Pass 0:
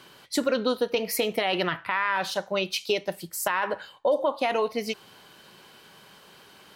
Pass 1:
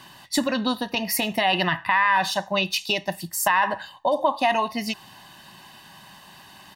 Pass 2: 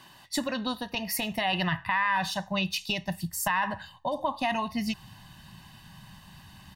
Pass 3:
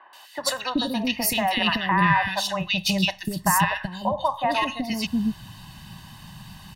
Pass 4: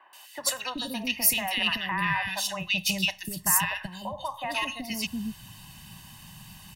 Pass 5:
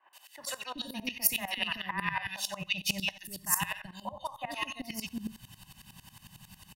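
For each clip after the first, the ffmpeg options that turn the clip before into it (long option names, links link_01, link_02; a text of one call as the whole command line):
ffmpeg -i in.wav -af "aecho=1:1:1.1:0.84,volume=3dB" out.wav
ffmpeg -i in.wav -af "asubboost=boost=11:cutoff=130,volume=-6dB" out.wav
ffmpeg -i in.wav -filter_complex "[0:a]acrossover=split=470|1800[link_01][link_02][link_03];[link_03]adelay=130[link_04];[link_01]adelay=380[link_05];[link_05][link_02][link_04]amix=inputs=3:normalize=0,volume=7.5dB" out.wav
ffmpeg -i in.wav -filter_complex "[0:a]acrossover=split=130|1100[link_01][link_02][link_03];[link_02]alimiter=limit=-22.5dB:level=0:latency=1:release=208[link_04];[link_01][link_04][link_03]amix=inputs=3:normalize=0,aexciter=amount=1.8:drive=4:freq=2200,volume=-6dB" out.wav
ffmpeg -i in.wav -af "aecho=1:1:72|144|216:0.119|0.0416|0.0146,aeval=exprs='val(0)*pow(10,-18*if(lt(mod(-11*n/s,1),2*abs(-11)/1000),1-mod(-11*n/s,1)/(2*abs(-11)/1000),(mod(-11*n/s,1)-2*abs(-11)/1000)/(1-2*abs(-11)/1000))/20)':channel_layout=same" out.wav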